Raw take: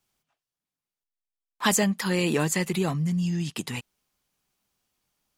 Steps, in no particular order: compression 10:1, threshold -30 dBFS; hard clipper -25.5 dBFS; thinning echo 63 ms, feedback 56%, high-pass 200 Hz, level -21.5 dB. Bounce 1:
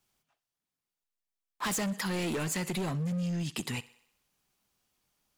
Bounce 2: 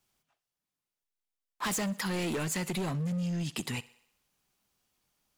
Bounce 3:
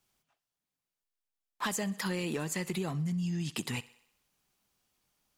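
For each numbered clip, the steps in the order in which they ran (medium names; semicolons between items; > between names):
thinning echo > hard clipper > compression; hard clipper > thinning echo > compression; thinning echo > compression > hard clipper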